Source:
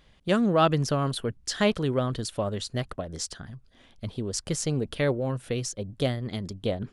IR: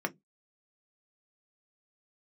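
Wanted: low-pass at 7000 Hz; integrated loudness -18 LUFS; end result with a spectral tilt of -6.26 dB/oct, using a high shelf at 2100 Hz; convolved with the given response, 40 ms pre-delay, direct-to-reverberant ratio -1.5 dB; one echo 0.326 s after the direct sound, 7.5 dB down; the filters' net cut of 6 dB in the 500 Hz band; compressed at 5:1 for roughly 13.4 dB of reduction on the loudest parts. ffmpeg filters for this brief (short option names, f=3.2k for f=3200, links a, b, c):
-filter_complex "[0:a]lowpass=7k,equalizer=f=500:t=o:g=-7,highshelf=f=2.1k:g=-8,acompressor=threshold=-37dB:ratio=5,aecho=1:1:326:0.422,asplit=2[a][b];[1:a]atrim=start_sample=2205,adelay=40[c];[b][c]afir=irnorm=-1:irlink=0,volume=-4.5dB[d];[a][d]amix=inputs=2:normalize=0,volume=19dB"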